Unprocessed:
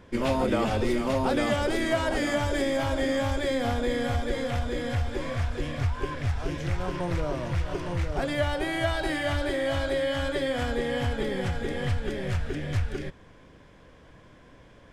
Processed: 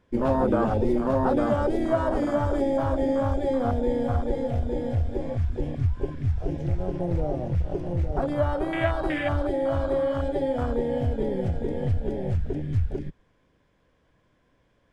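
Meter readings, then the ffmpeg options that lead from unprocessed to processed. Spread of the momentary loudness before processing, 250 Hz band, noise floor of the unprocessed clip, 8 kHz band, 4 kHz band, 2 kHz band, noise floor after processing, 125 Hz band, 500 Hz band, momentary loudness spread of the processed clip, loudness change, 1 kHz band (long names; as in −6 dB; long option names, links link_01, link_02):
5 LU, +3.0 dB, −53 dBFS, below −10 dB, −11.5 dB, −6.0 dB, −66 dBFS, +3.0 dB, +2.5 dB, 5 LU, +2.0 dB, +1.5 dB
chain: -af "afwtdn=0.0398,volume=3dB"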